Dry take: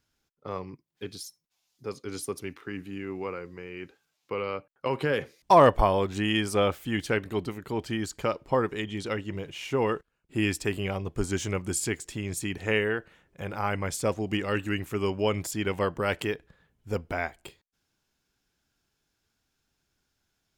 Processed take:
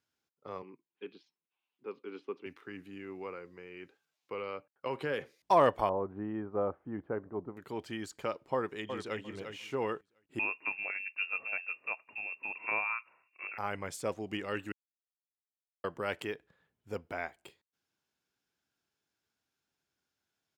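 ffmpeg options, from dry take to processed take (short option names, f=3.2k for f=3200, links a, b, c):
-filter_complex "[0:a]asettb=1/sr,asplit=3[a][b][c];[a]atrim=end=0.624[d];[b]atrim=start=0.62:end=2.46,asetpts=PTS-STARTPTS,afade=t=in:d=0.004:c=qsin,afade=t=out:st=1.836:d=0.004:c=qsin,highpass=f=190:w=0.5412,highpass=f=190:w=1.3066,equalizer=f=380:t=q:w=4:g=4,equalizer=f=650:t=q:w=4:g=-8,equalizer=f=960:t=q:w=4:g=3,equalizer=f=1.9k:t=q:w=4:g=-4,equalizer=f=2.7k:t=q:w=4:g=6,lowpass=f=3k:w=0.5412,lowpass=f=3k:w=1.3066[e];[c]atrim=start=2.456[f];[d][e]acrossfade=d=0.004:c1=hsin:c2=qsin[g];[g][f]acrossfade=d=0.004:c1=qsin:c2=hsin,asettb=1/sr,asplit=3[h][i][j];[h]atrim=end=5.894[k];[i]atrim=start=5.89:end=7.57,asetpts=PTS-STARTPTS,afade=t=in:d=0.004:c=qsin,afade=t=out:st=1.676:d=0.004:c=qsin,lowpass=f=1.2k:w=0.5412,lowpass=f=1.2k:w=1.3066[l];[j]atrim=start=7.566[m];[k][l]acrossfade=d=0.004:c1=hsin:c2=qsin[n];[n][m]acrossfade=d=0.004:c1=qsin:c2=hsin,asplit=2[o][p];[p]afade=t=in:st=8.54:d=0.01,afade=t=out:st=9.21:d=0.01,aecho=0:1:350|700|1050:0.446684|0.0893367|0.0178673[q];[o][q]amix=inputs=2:normalize=0,asettb=1/sr,asplit=3[r][s][t];[r]atrim=end=10.394[u];[s]atrim=start=10.39:end=13.58,asetpts=PTS-STARTPTS,afade=t=in:d=0.004:c=qsin,afade=t=out:st=3.186:d=0.004:c=qsin,lowpass=f=2.4k:t=q:w=0.5098,lowpass=f=2.4k:t=q:w=0.6013,lowpass=f=2.4k:t=q:w=0.9,lowpass=f=2.4k:t=q:w=2.563,afreqshift=-2800[v];[t]atrim=start=13.576[w];[u][v]acrossfade=d=0.004:c1=hsin:c2=qsin[x];[x][w]acrossfade=d=0.004:c1=qsin:c2=hsin,asplit=3[y][z][aa];[y]atrim=end=14.72,asetpts=PTS-STARTPTS,afade=t=out:st=14.716:d=0.004:c=hsin[ab];[z]atrim=start=14.72:end=15.84,asetpts=PTS-STARTPTS,volume=0[ac];[aa]atrim=start=15.84,asetpts=PTS-STARTPTS,afade=t=in:d=0.004:c=hsin[ad];[ab][ac][ad]concat=n=3:v=0:a=1,highpass=90,bass=f=250:g=-5,treble=f=4k:g=-3,volume=-7dB"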